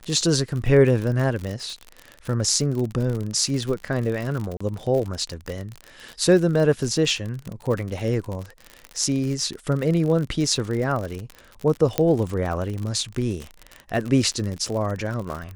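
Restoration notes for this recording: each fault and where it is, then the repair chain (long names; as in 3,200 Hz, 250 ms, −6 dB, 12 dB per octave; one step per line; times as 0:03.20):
surface crackle 51 per second −27 dBFS
0:04.57–0:04.61: drop-out 35 ms
0:11.98: click −6 dBFS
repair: click removal
repair the gap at 0:04.57, 35 ms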